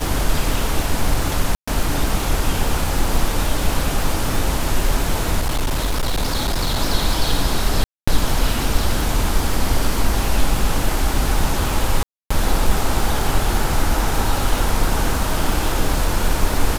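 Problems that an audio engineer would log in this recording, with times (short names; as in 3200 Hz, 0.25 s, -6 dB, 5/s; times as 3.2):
crackle 350/s -24 dBFS
1.55–1.68 gap 0.125 s
5.39–6.77 clipped -15.5 dBFS
7.84–8.07 gap 0.235 s
12.03–12.3 gap 0.275 s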